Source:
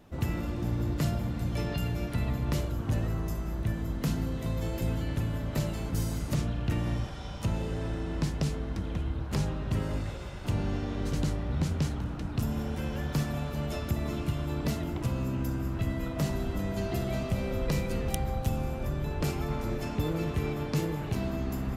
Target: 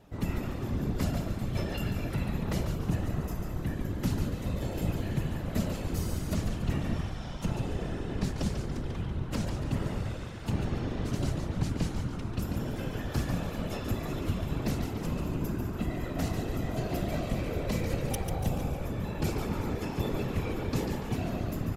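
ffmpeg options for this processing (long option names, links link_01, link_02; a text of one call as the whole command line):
ffmpeg -i in.wav -filter_complex "[0:a]asplit=6[link_01][link_02][link_03][link_04][link_05][link_06];[link_02]adelay=143,afreqshift=-75,volume=-6.5dB[link_07];[link_03]adelay=286,afreqshift=-150,volume=-13.4dB[link_08];[link_04]adelay=429,afreqshift=-225,volume=-20.4dB[link_09];[link_05]adelay=572,afreqshift=-300,volume=-27.3dB[link_10];[link_06]adelay=715,afreqshift=-375,volume=-34.2dB[link_11];[link_01][link_07][link_08][link_09][link_10][link_11]amix=inputs=6:normalize=0,afftfilt=real='hypot(re,im)*cos(2*PI*random(0))':imag='hypot(re,im)*sin(2*PI*random(1))':win_size=512:overlap=0.75,volume=4.5dB" out.wav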